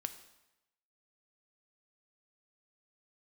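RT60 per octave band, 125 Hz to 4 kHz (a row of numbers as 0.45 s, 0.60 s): 0.90 s, 0.85 s, 0.95 s, 0.95 s, 0.90 s, 0.85 s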